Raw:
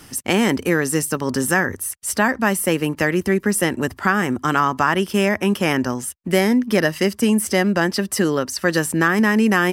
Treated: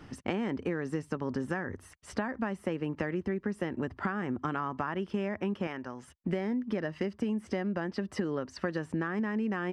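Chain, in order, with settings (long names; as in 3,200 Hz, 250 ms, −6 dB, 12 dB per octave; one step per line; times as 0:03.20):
head-to-tape spacing loss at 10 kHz 30 dB
downward compressor 10 to 1, threshold −26 dBFS, peak gain reduction 13.5 dB
0:05.67–0:06.08: low-shelf EQ 450 Hz −10.5 dB
level −2.5 dB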